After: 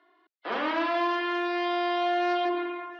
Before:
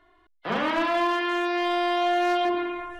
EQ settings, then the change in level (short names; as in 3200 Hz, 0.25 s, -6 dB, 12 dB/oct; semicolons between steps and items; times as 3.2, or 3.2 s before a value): elliptic band-pass 280–5100 Hz, stop band 40 dB; -2.5 dB